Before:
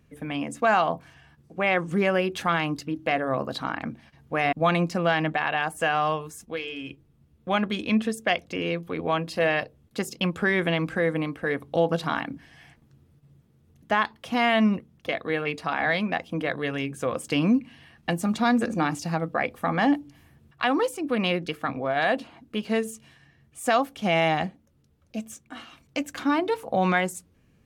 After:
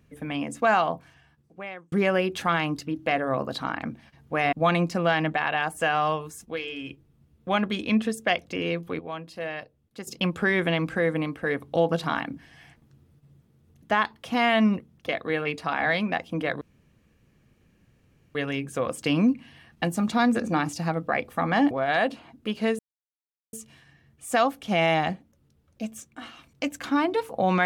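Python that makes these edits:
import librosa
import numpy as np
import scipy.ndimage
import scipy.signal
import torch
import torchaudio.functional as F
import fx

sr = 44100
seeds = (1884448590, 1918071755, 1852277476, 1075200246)

y = fx.edit(x, sr, fx.fade_out_span(start_s=0.71, length_s=1.21),
    fx.clip_gain(start_s=8.99, length_s=1.08, db=-10.0),
    fx.insert_room_tone(at_s=16.61, length_s=1.74),
    fx.cut(start_s=19.97, length_s=1.82),
    fx.insert_silence(at_s=22.87, length_s=0.74), tone=tone)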